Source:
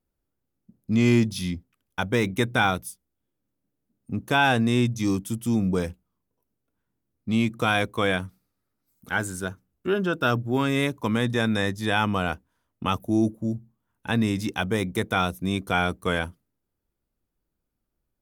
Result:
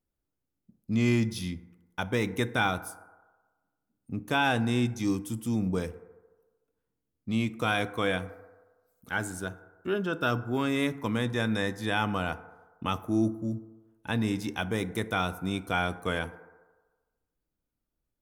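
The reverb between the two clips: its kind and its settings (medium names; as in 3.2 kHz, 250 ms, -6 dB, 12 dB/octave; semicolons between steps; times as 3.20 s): FDN reverb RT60 1.3 s, low-frequency decay 0.7×, high-frequency decay 0.3×, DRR 12.5 dB; trim -5 dB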